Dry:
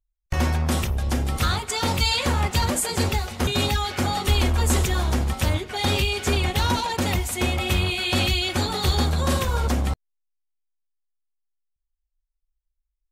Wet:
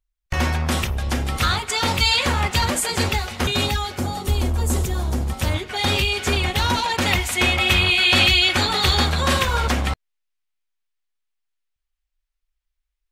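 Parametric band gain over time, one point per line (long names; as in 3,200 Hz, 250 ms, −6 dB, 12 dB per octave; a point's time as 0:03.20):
parametric band 2,300 Hz 2.6 octaves
0:03.41 +6 dB
0:03.84 0 dB
0:04.01 −7.5 dB
0:05.17 −7.5 dB
0:05.58 +4.5 dB
0:06.71 +4.5 dB
0:07.16 +10.5 dB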